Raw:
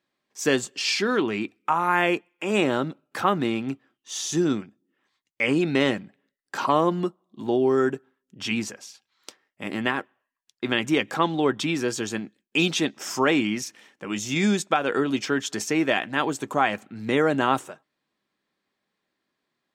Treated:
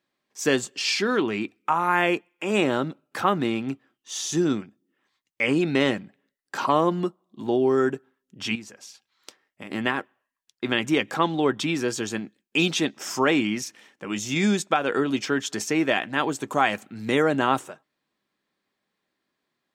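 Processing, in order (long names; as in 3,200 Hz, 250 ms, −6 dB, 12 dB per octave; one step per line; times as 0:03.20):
0:08.55–0:09.71: downward compressor 6 to 1, threshold −37 dBFS, peak gain reduction 13 dB
0:16.51–0:17.22: high-shelf EQ 3,700 Hz → 5,500 Hz +7.5 dB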